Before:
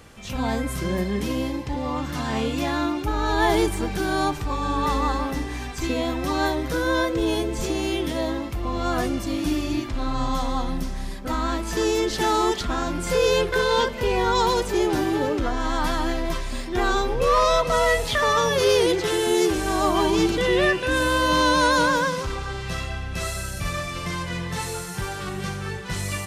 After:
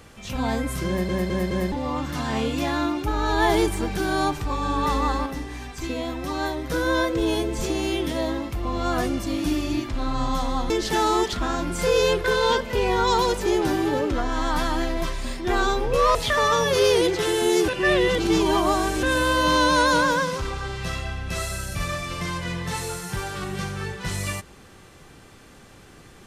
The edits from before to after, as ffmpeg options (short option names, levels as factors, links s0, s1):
-filter_complex "[0:a]asplit=11[s0][s1][s2][s3][s4][s5][s6][s7][s8][s9][s10];[s0]atrim=end=1.092[s11];[s1]atrim=start=0.878:end=1.092[s12];[s2]atrim=start=0.878:end=1.092[s13];[s3]atrim=start=0.878:end=1.092[s14];[s4]atrim=start=1.718:end=5.262[s15];[s5]atrim=start=5.258:end=6.702,asetpts=PTS-STARTPTS,volume=0.631[s16];[s6]atrim=start=6.698:end=10.702[s17];[s7]atrim=start=11.978:end=17.432[s18];[s8]atrim=start=17.998:end=19.532[s19];[s9]atrim=start=19.528:end=20.882,asetpts=PTS-STARTPTS,areverse[s20];[s10]atrim=start=20.878[s21];[s11][s12]acrossfade=d=0.004:c1=hsin:c2=hsin[s22];[s22][s13]acrossfade=d=0.004:c1=hsin:c2=hsin[s23];[s23][s14]acrossfade=d=0.004:c1=hsin:c2=hsin[s24];[s24][s15]acrossfade=d=0.004:c1=hsin:c2=hsin[s25];[s25][s16]acrossfade=d=0.004:c1=hsin:c2=hsin[s26];[s26][s17]acrossfade=d=0.004:c1=hsin:c2=hsin[s27];[s27][s18]acrossfade=d=0.004:c1=hsin:c2=hsin[s28];[s28][s19]acrossfade=d=0.004:c1=hsin:c2=hsin[s29];[s29][s20]acrossfade=d=0.004:c1=hsin:c2=hsin[s30];[s30][s21]acrossfade=d=0.004:c1=hsin:c2=hsin"